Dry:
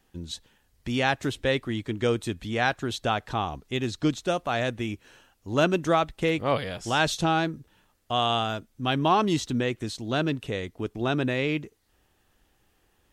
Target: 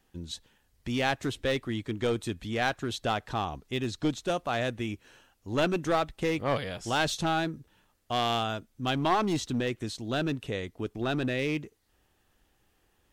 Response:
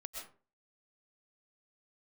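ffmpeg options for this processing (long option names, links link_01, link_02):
-af "aeval=exprs='clip(val(0),-1,0.0841)':channel_layout=same,volume=-2.5dB"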